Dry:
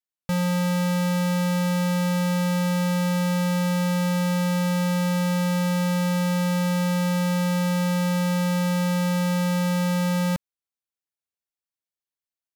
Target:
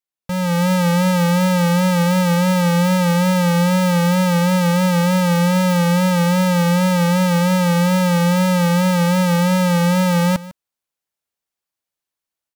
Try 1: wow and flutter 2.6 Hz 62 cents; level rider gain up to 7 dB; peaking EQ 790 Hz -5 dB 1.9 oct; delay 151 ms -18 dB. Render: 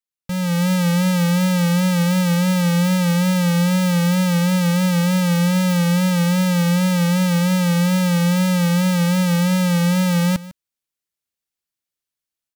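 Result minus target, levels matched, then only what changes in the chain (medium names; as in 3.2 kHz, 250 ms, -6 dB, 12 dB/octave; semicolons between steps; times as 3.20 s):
1 kHz band -5.0 dB
change: peaking EQ 790 Hz +2.5 dB 1.9 oct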